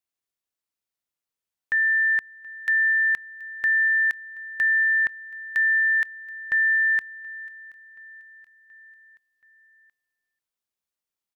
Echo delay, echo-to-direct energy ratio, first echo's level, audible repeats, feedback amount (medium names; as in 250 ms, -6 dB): 727 ms, -22.0 dB, -23.5 dB, 3, 58%